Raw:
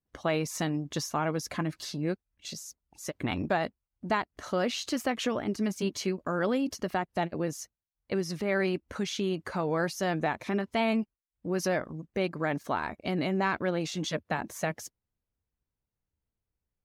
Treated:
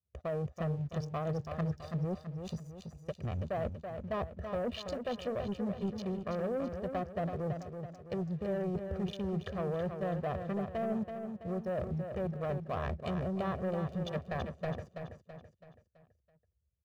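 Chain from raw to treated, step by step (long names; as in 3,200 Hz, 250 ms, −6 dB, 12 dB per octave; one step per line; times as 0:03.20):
adaptive Wiener filter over 41 samples
treble cut that deepens with the level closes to 780 Hz, closed at −25.5 dBFS
high-pass filter 56 Hz 24 dB per octave
parametric band 72 Hz +10.5 dB 0.84 octaves
notch filter 2,200 Hz, Q 14
comb filter 1.7 ms, depth 91%
reversed playback
downward compressor 6 to 1, threshold −39 dBFS, peak gain reduction 17.5 dB
reversed playback
leveller curve on the samples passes 2
on a send: repeating echo 330 ms, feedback 45%, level −7 dB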